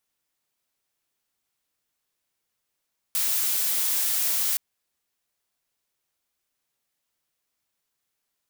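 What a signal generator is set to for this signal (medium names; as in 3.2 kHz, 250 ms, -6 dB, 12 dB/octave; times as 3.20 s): noise blue, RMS -24.5 dBFS 1.42 s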